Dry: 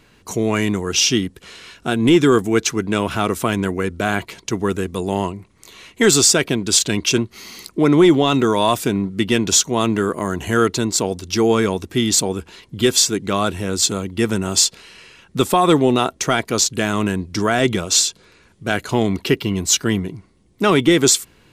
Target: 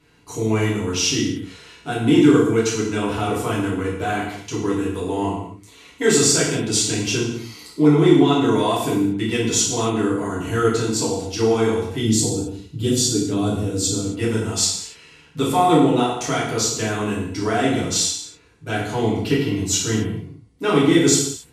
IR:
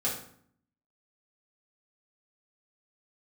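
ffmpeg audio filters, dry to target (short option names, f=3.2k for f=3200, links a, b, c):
-filter_complex "[0:a]asettb=1/sr,asplit=3[a][b][c];[a]atrim=end=12.014[d];[b]atrim=start=12.01:end=14.07,asetpts=PTS-STARTPTS,afade=t=in:d=0.004:c=qsin,afade=t=out:st=2.056:d=0.004:c=qsin,equalizer=f=125:t=o:w=1:g=5,equalizer=f=250:t=o:w=1:g=4,equalizer=f=1k:t=o:w=1:g=-7,equalizer=f=2k:t=o:w=1:g=-10[e];[c]atrim=start=14.066[f];[d][e]acrossfade=d=0.004:c1=hsin:c2=qsin[g];[g][f]acrossfade=d=0.004:c1=qsin:c2=hsin[h];[1:a]atrim=start_sample=2205,afade=t=out:st=0.22:d=0.01,atrim=end_sample=10143,asetrate=26019,aresample=44100[i];[h][i]afir=irnorm=-1:irlink=0,volume=-13.5dB"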